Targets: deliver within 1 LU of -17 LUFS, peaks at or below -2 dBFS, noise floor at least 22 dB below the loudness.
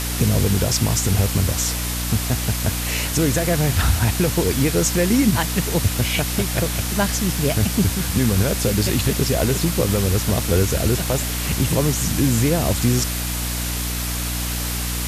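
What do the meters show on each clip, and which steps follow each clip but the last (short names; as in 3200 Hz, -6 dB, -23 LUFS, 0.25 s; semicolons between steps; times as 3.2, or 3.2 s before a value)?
hum 60 Hz; harmonics up to 300 Hz; hum level -24 dBFS; noise floor -25 dBFS; noise floor target -42 dBFS; loudness -20.0 LUFS; peak -5.5 dBFS; loudness target -17.0 LUFS
-> de-hum 60 Hz, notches 5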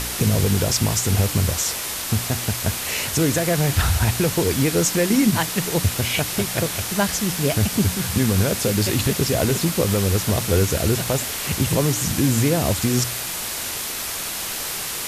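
hum none; noise floor -28 dBFS; noise floor target -43 dBFS
-> denoiser 15 dB, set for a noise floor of -28 dBFS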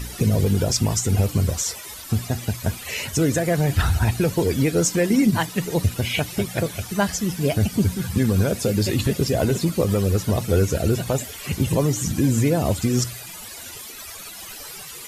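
noise floor -38 dBFS; noise floor target -44 dBFS
-> denoiser 6 dB, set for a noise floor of -38 dBFS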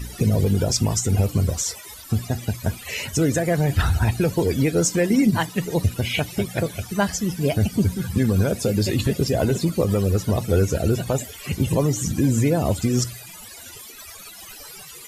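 noise floor -41 dBFS; noise floor target -44 dBFS
-> denoiser 6 dB, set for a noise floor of -41 dBFS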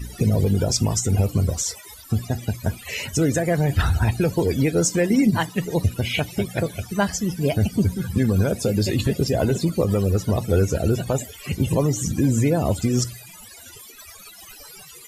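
noise floor -44 dBFS; loudness -22.0 LUFS; peak -8.5 dBFS; loudness target -17.0 LUFS
-> gain +5 dB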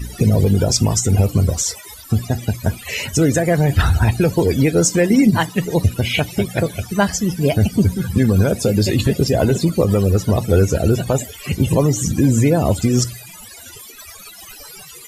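loudness -17.0 LUFS; peak -3.5 dBFS; noise floor -39 dBFS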